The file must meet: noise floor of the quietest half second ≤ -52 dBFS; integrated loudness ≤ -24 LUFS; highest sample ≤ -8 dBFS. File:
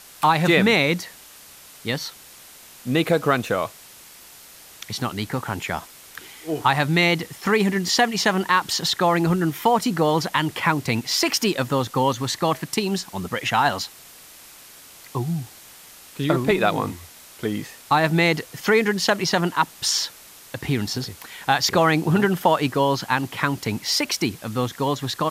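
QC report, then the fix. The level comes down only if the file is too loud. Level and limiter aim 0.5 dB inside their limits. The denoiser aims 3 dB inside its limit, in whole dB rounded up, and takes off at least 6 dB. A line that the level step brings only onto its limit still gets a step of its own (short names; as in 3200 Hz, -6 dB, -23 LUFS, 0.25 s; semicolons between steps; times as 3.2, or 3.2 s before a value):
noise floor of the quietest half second -46 dBFS: fail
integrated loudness -22.0 LUFS: fail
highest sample -5.0 dBFS: fail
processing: denoiser 7 dB, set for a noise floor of -46 dBFS; gain -2.5 dB; limiter -8.5 dBFS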